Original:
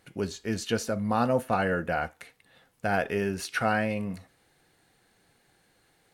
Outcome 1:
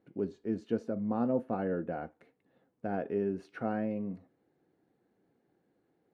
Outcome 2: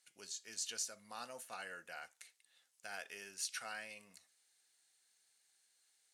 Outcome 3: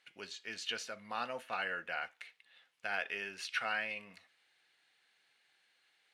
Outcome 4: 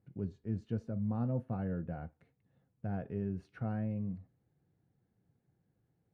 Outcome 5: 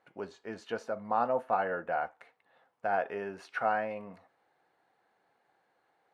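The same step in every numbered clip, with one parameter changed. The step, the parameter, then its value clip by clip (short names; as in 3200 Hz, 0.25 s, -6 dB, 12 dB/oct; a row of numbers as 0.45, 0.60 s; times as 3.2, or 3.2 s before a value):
band-pass, frequency: 300, 7300, 2800, 120, 850 Hz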